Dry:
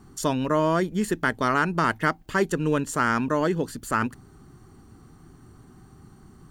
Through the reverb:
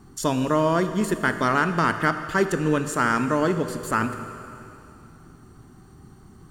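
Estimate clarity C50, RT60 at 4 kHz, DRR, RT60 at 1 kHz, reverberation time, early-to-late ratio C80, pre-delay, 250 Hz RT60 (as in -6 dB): 9.0 dB, 2.7 s, 8.5 dB, 2.7 s, 2.7 s, 10.0 dB, 18 ms, 2.7 s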